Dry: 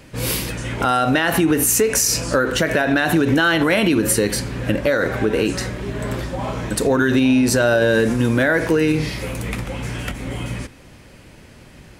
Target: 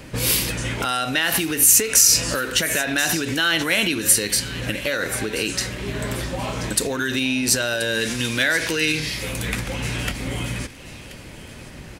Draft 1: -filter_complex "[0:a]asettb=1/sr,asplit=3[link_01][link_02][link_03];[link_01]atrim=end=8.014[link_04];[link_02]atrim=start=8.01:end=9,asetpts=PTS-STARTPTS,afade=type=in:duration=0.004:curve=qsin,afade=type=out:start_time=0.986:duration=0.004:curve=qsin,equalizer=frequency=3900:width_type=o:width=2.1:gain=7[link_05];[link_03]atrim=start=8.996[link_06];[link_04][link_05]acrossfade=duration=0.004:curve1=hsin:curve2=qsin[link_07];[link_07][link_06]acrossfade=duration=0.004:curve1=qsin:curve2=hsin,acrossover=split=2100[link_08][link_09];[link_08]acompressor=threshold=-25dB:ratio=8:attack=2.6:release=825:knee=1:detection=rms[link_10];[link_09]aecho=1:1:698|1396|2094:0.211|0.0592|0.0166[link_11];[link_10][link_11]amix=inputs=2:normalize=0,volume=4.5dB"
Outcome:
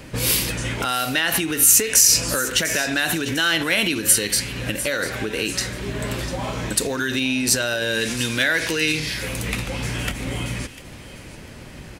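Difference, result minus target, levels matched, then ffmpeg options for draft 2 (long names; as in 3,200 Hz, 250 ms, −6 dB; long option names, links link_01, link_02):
echo 333 ms early
-filter_complex "[0:a]asettb=1/sr,asplit=3[link_01][link_02][link_03];[link_01]atrim=end=8.014[link_04];[link_02]atrim=start=8.01:end=9,asetpts=PTS-STARTPTS,afade=type=in:duration=0.004:curve=qsin,afade=type=out:start_time=0.986:duration=0.004:curve=qsin,equalizer=frequency=3900:width_type=o:width=2.1:gain=7[link_05];[link_03]atrim=start=8.996[link_06];[link_04][link_05]acrossfade=duration=0.004:curve1=hsin:curve2=qsin[link_07];[link_07][link_06]acrossfade=duration=0.004:curve1=qsin:curve2=hsin,acrossover=split=2100[link_08][link_09];[link_08]acompressor=threshold=-25dB:ratio=8:attack=2.6:release=825:knee=1:detection=rms[link_10];[link_09]aecho=1:1:1031|2062|3093:0.211|0.0592|0.0166[link_11];[link_10][link_11]amix=inputs=2:normalize=0,volume=4.5dB"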